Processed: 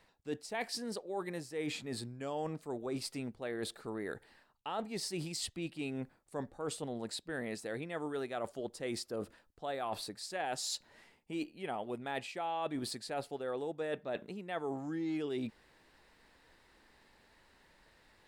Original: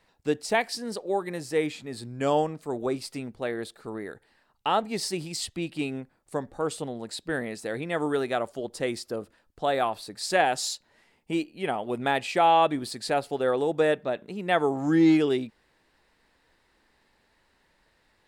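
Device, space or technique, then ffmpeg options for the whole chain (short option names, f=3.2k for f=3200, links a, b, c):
compression on the reversed sound: -af "areverse,acompressor=threshold=-38dB:ratio=6,areverse,volume=1.5dB"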